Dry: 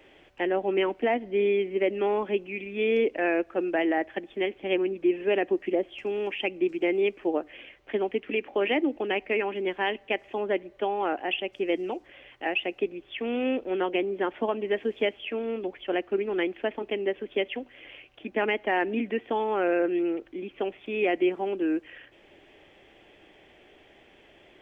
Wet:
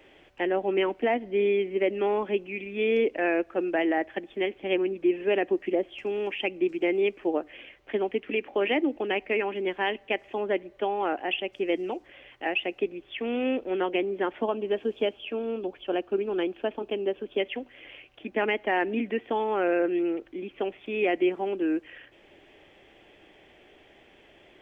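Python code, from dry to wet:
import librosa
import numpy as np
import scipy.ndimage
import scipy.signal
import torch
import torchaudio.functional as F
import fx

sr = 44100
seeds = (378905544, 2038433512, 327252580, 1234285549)

y = fx.peak_eq(x, sr, hz=2000.0, db=-13.0, octaves=0.33, at=(14.44, 17.4))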